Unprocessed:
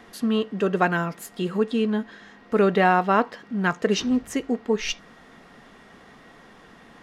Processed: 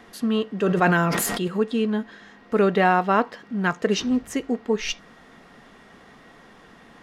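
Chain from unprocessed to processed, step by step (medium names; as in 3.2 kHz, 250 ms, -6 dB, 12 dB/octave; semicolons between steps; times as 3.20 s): 0.59–1.48 s: decay stretcher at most 21 dB/s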